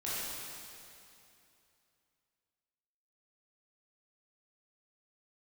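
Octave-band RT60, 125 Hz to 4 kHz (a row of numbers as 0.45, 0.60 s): 2.9, 2.8, 2.7, 2.7, 2.6, 2.5 s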